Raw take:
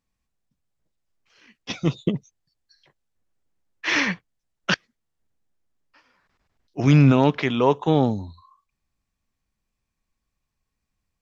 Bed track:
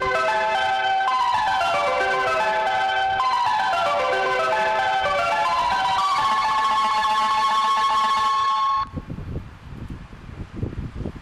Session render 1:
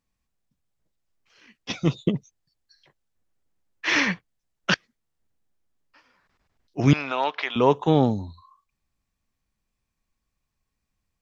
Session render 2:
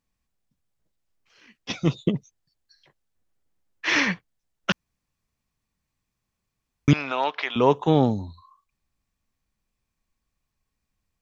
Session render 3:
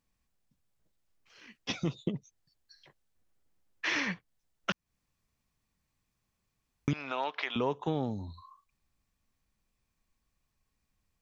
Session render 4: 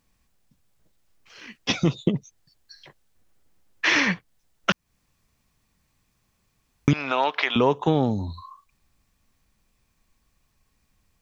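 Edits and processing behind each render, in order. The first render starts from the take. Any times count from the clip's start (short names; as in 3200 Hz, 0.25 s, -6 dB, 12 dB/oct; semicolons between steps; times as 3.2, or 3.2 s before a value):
6.93–7.56 Chebyshev band-pass 770–4400 Hz
4.72–6.88 room tone
compressor 3:1, threshold -32 dBFS, peak gain reduction 15 dB
gain +11 dB; limiter -2 dBFS, peak gain reduction 1 dB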